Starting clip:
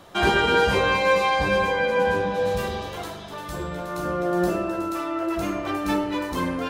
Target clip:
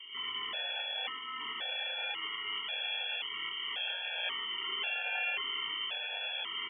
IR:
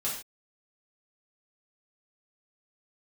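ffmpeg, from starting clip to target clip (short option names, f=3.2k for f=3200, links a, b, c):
-filter_complex "[0:a]acrossover=split=740|2100[a][b][c];[a]acompressor=threshold=-34dB:ratio=4[d];[b]acompressor=threshold=-38dB:ratio=4[e];[c]acompressor=threshold=-33dB:ratio=4[f];[d][e][f]amix=inputs=3:normalize=0,alimiter=level_in=3.5dB:limit=-24dB:level=0:latency=1:release=422,volume=-3.5dB,aecho=1:1:90.38|274.1:0.794|0.447,aeval=exprs='0.0891*(cos(1*acos(clip(val(0)/0.0891,-1,1)))-cos(1*PI/2))+0.0112*(cos(8*acos(clip(val(0)/0.0891,-1,1)))-cos(8*PI/2))':c=same,tiltshelf=f=810:g=3.5,aeval=exprs='0.0316*(abs(mod(val(0)/0.0316+3,4)-2)-1)':c=same,adynamicsmooth=sensitivity=5.5:basefreq=900,lowpass=f=2.9k:t=q:w=0.5098,lowpass=f=2.9k:t=q:w=0.6013,lowpass=f=2.9k:t=q:w=0.9,lowpass=f=2.9k:t=q:w=2.563,afreqshift=-3400,highpass=70,equalizer=f=580:t=o:w=2.1:g=12.5,asplit=2[g][h];[h]adelay=27,volume=-3dB[i];[g][i]amix=inputs=2:normalize=0,afftfilt=real='re*gt(sin(2*PI*0.93*pts/sr)*(1-2*mod(floor(b*sr/1024/460),2)),0)':imag='im*gt(sin(2*PI*0.93*pts/sr)*(1-2*mod(floor(b*sr/1024/460),2)),0)':win_size=1024:overlap=0.75"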